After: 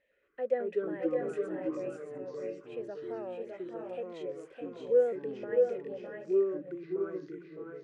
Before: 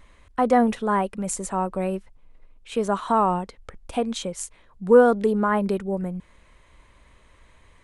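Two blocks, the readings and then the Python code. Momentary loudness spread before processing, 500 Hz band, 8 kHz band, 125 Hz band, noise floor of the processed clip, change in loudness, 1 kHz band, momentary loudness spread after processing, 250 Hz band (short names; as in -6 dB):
17 LU, -7.0 dB, under -30 dB, -19.0 dB, -59 dBFS, -11.0 dB, -23.5 dB, 13 LU, -13.5 dB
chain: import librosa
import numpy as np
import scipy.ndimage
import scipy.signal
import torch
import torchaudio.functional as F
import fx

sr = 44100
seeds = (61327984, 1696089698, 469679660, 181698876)

y = fx.vowel_filter(x, sr, vowel='e')
y = fx.echo_pitch(y, sr, ms=112, semitones=-4, count=2, db_per_echo=-3.0)
y = fx.echo_multitap(y, sr, ms=(608, 630, 698), db=(-6.5, -5.0, -16.0))
y = y * 10.0 ** (-6.0 / 20.0)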